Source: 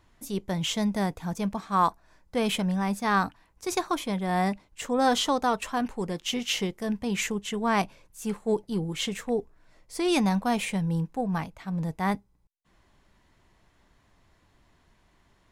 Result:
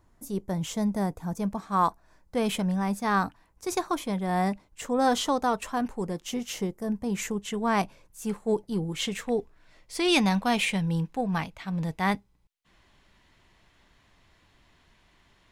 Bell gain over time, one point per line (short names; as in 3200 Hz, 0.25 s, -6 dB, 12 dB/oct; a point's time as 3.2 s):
bell 3000 Hz 1.7 oct
1.24 s -11 dB
1.85 s -4 dB
5.73 s -4 dB
6.86 s -14.5 dB
7.5 s -2.5 dB
8.91 s -2.5 dB
9.38 s +7 dB